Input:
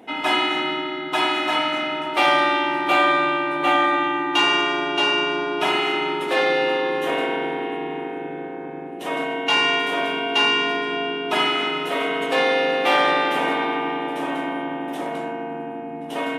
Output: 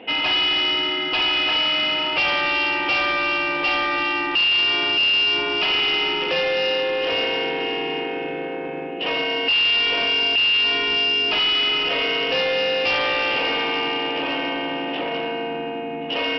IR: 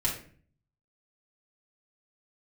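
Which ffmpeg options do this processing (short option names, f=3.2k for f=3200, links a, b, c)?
-af "equalizer=f=500:w=7.4:g=11.5,acompressor=threshold=-25dB:ratio=2,lowpass=f=2.8k:t=q:w=7.4,aresample=11025,asoftclip=type=tanh:threshold=-19dB,aresample=44100,volume=2dB"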